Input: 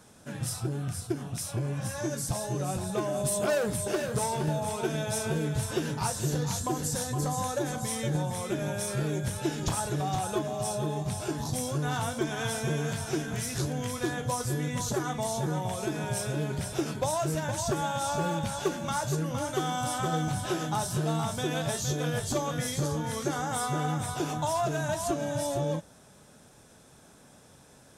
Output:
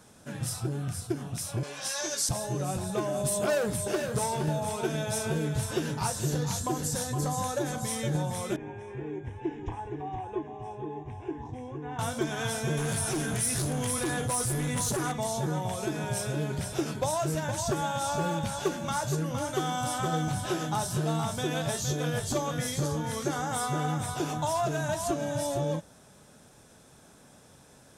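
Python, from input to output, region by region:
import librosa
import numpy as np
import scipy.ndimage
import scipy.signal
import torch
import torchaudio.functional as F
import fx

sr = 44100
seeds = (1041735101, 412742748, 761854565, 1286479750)

y = fx.chain(x, sr, fx.highpass(hz=490.0, slope=12),
    fx.peak_eq(hz=4500.0, db=12.5, octaves=1.7), at=(1.63, 2.29))
y = fx.chain(y, sr, fx.spacing_loss(db_at_10k=35),
    fx.fixed_phaser(hz=890.0, stages=8), at=(8.56, 11.99))
y = fx.chain(y, sr, fx.clip_hard(threshold_db=-29.0),
    fx.peak_eq(hz=9800.0, db=13.0, octaves=0.32),
    fx.env_flatten(amount_pct=50), at=(12.77, 15.12))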